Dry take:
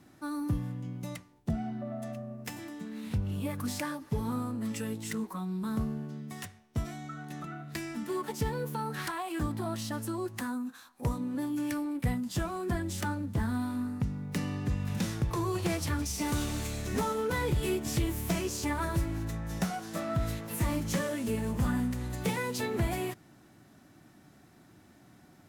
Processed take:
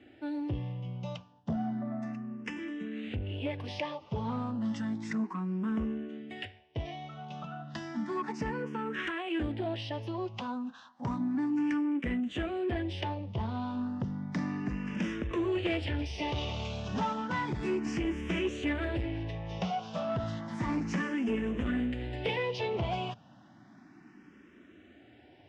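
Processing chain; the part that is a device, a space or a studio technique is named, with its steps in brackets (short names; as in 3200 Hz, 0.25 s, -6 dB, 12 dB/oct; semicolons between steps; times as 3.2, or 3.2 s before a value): barber-pole phaser into a guitar amplifier (endless phaser +0.32 Hz; soft clip -28.5 dBFS, distortion -15 dB; speaker cabinet 77–4600 Hz, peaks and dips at 100 Hz -4 dB, 150 Hz -6 dB, 1300 Hz -4 dB, 2900 Hz +6 dB, 4200 Hz -9 dB); gain +5.5 dB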